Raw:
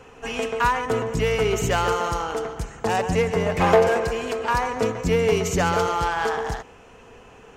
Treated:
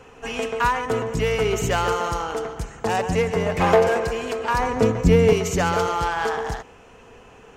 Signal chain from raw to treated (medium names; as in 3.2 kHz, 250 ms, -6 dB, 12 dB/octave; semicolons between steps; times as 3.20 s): 4.59–5.33 s: bass shelf 370 Hz +9.5 dB